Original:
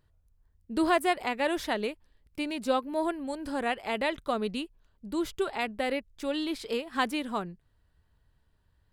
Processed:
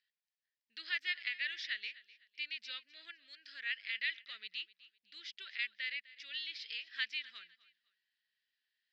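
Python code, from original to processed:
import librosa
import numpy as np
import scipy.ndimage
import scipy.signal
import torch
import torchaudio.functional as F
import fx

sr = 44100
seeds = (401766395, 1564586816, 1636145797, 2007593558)

p1 = scipy.signal.sosfilt(scipy.signal.ellip(3, 1.0, 40, [1800.0, 5300.0], 'bandpass', fs=sr, output='sos'), x)
p2 = p1 + fx.echo_feedback(p1, sr, ms=253, feedback_pct=29, wet_db=-19.0, dry=0)
y = p2 * 10.0 ** (-1.5 / 20.0)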